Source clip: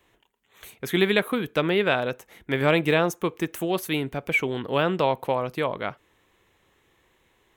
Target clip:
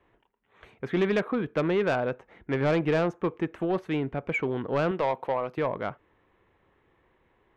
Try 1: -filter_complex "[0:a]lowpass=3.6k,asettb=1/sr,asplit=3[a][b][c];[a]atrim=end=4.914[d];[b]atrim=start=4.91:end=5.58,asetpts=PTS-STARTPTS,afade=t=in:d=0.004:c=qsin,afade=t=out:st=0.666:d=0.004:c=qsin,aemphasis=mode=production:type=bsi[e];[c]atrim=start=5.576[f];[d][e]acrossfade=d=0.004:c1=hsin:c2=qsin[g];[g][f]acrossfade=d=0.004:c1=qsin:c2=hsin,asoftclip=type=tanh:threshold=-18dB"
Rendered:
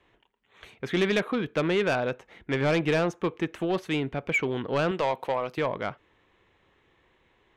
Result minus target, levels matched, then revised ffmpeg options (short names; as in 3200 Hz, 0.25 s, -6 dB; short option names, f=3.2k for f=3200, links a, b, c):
4000 Hz band +6.5 dB
-filter_complex "[0:a]lowpass=1.7k,asettb=1/sr,asplit=3[a][b][c];[a]atrim=end=4.914[d];[b]atrim=start=4.91:end=5.58,asetpts=PTS-STARTPTS,afade=t=in:d=0.004:c=qsin,afade=t=out:st=0.666:d=0.004:c=qsin,aemphasis=mode=production:type=bsi[e];[c]atrim=start=5.576[f];[d][e]acrossfade=d=0.004:c1=hsin:c2=qsin[g];[g][f]acrossfade=d=0.004:c1=qsin:c2=hsin,asoftclip=type=tanh:threshold=-18dB"